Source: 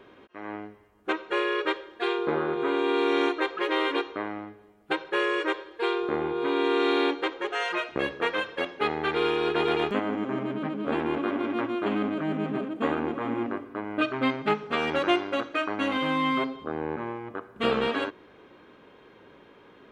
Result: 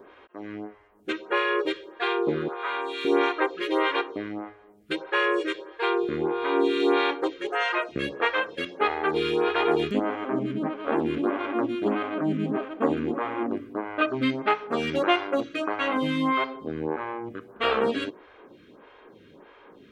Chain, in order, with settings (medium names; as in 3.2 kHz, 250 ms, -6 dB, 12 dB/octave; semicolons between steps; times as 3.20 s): 2.48–3.05 s: high-pass 800 Hz 12 dB/octave; lamp-driven phase shifter 1.6 Hz; trim +4.5 dB